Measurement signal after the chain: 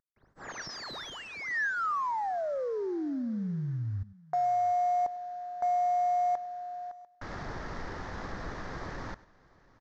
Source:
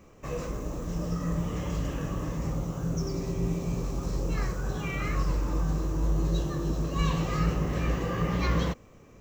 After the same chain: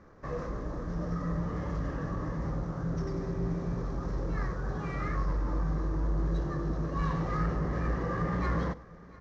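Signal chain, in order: CVSD coder 32 kbps; dynamic bell 1.5 kHz, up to -7 dB, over -58 dBFS, Q 6.8; delay 695 ms -23 dB; saturation -20.5 dBFS; resonant high shelf 2.1 kHz -8 dB, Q 3; delay 101 ms -19.5 dB; trim -1.5 dB

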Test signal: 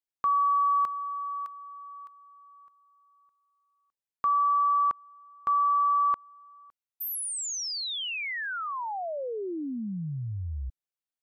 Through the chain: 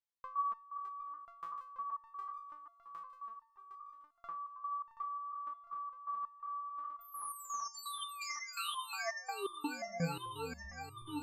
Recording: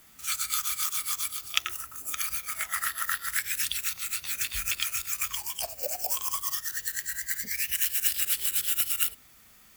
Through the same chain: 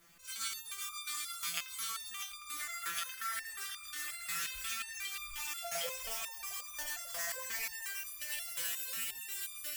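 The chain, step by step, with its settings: backward echo that repeats 380 ms, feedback 78%, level -0.5 dB; treble shelf 9.3 kHz -7 dB; compression 12:1, threshold -29 dBFS; feedback echo behind a low-pass 867 ms, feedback 79%, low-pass 1.4 kHz, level -22 dB; resonator arpeggio 5.6 Hz 170–1200 Hz; trim +8 dB

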